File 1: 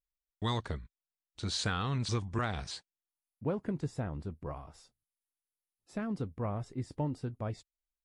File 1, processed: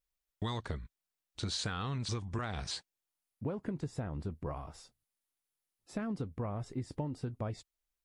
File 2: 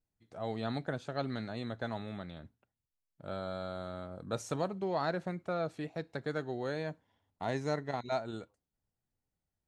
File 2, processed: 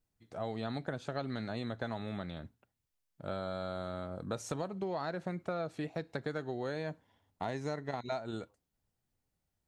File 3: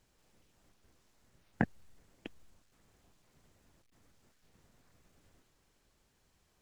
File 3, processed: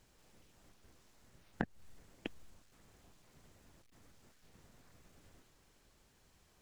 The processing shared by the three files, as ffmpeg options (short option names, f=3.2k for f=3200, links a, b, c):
-af "acompressor=threshold=-37dB:ratio=8,volume=4dB"